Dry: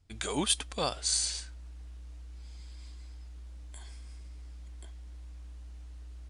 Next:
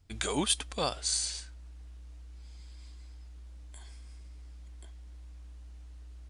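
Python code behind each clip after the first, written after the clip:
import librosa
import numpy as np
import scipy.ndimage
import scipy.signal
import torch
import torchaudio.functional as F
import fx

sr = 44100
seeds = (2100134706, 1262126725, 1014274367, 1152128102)

y = fx.rider(x, sr, range_db=10, speed_s=0.5)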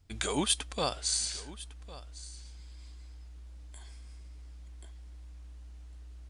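y = x + 10.0 ** (-18.0 / 20.0) * np.pad(x, (int(1104 * sr / 1000.0), 0))[:len(x)]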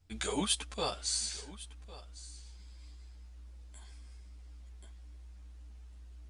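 y = fx.ensemble(x, sr)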